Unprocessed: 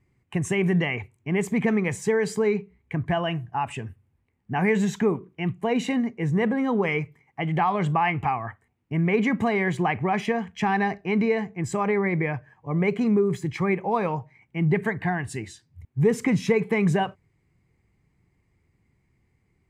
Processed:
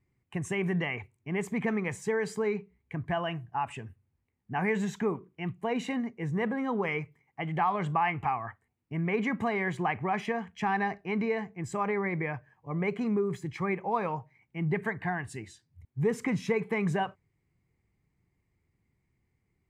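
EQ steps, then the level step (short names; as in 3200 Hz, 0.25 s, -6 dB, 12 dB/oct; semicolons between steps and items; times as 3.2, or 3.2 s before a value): dynamic EQ 1200 Hz, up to +5 dB, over -37 dBFS, Q 0.83; -8.0 dB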